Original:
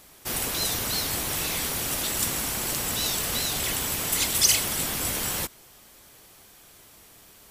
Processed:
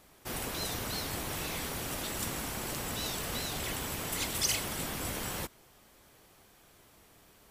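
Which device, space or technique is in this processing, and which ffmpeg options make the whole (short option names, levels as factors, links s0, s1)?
behind a face mask: -af "highshelf=f=2800:g=-8,volume=0.631"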